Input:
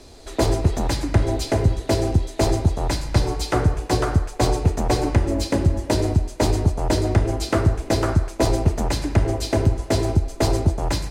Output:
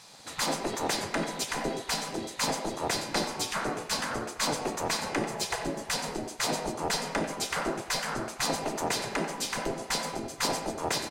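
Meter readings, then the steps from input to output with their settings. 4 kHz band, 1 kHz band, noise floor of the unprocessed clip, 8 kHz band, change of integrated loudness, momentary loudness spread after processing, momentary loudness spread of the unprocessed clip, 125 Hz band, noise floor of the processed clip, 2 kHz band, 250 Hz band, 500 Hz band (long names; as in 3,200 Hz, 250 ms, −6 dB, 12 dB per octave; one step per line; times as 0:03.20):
−0.5 dB, −4.0 dB, −38 dBFS, 0.0 dB, −9.5 dB, 3 LU, 2 LU, −23.0 dB, −45 dBFS, −0.5 dB, −12.0 dB, −10.0 dB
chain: hum removal 111 Hz, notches 29
gate on every frequency bin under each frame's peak −15 dB weak
far-end echo of a speakerphone 90 ms, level −9 dB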